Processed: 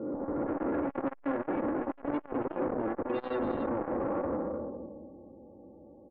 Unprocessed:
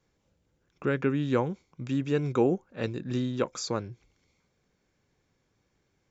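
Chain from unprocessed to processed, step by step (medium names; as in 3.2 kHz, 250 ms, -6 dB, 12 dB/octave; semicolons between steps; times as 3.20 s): spectral blur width 951 ms; hum notches 50/100/150/200/250 Hz; level-controlled noise filter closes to 450 Hz, open at -32.5 dBFS; 1.27–3.38 s: tilt shelf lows -4.5 dB, about 1.2 kHz; comb 3.6 ms, depth 75%; dynamic bell 360 Hz, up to +5 dB, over -47 dBFS, Q 1.2; overdrive pedal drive 41 dB, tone 1.5 kHz, clips at -21.5 dBFS; loudest bins only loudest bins 32; delay 277 ms -8 dB; transformer saturation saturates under 620 Hz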